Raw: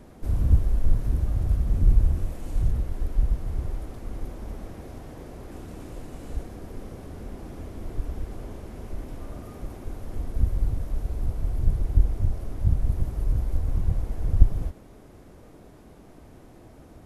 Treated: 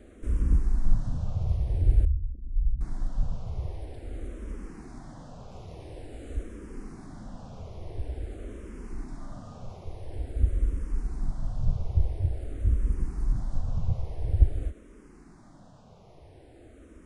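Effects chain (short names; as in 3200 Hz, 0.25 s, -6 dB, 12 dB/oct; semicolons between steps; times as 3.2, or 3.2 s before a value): 2.05–2.81 formant sharpening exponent 3; downsampling 22050 Hz; endless phaser -0.48 Hz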